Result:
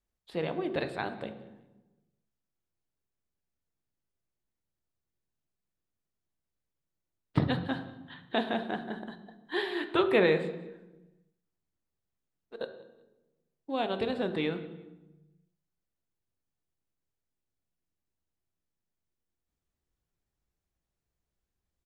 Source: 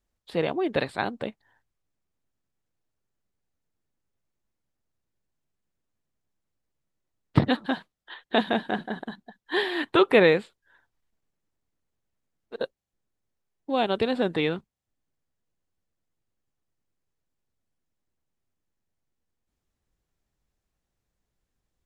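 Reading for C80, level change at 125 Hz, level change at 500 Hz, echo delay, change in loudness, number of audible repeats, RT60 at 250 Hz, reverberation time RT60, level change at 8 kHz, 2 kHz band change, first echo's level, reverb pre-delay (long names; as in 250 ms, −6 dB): 12.5 dB, −4.5 dB, −5.5 dB, 186 ms, −6.0 dB, 2, 1.5 s, 1.1 s, can't be measured, −6.5 dB, −23.0 dB, 3 ms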